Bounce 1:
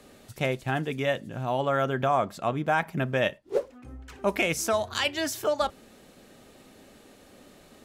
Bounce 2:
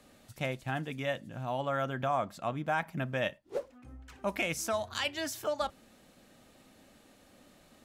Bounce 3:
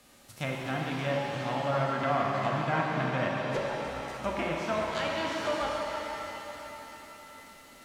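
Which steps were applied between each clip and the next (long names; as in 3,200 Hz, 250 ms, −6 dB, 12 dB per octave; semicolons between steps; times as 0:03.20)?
parametric band 410 Hz −8 dB 0.34 octaves; level −6 dB
spectral envelope flattened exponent 0.6; treble cut that deepens with the level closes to 1,800 Hz, closed at −29 dBFS; reverb with rising layers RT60 3.8 s, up +7 semitones, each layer −8 dB, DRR −2.5 dB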